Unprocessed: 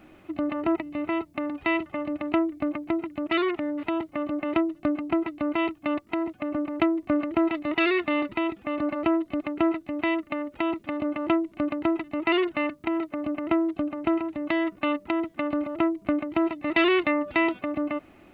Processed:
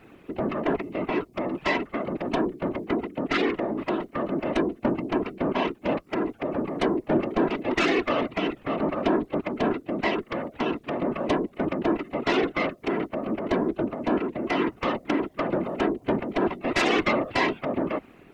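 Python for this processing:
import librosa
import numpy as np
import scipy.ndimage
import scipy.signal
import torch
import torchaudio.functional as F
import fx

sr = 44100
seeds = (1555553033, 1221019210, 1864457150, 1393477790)

y = fx.spec_quant(x, sr, step_db=15)
y = fx.cheby_harmonics(y, sr, harmonics=(4, 5), levels_db=(-8, -12), full_scale_db=-9.5)
y = fx.whisperise(y, sr, seeds[0])
y = y * librosa.db_to_amplitude(-5.5)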